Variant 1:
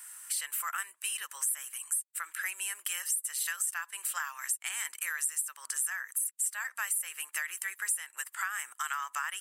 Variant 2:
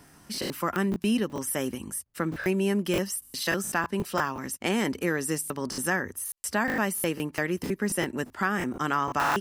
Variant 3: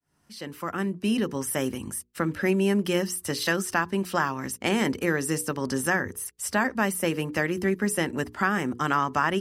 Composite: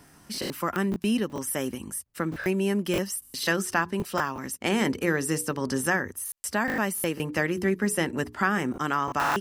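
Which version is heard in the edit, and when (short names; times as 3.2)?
2
3.43–3.93 from 3
4.67–6.01 from 3, crossfade 0.24 s
7.2–8.72 from 3
not used: 1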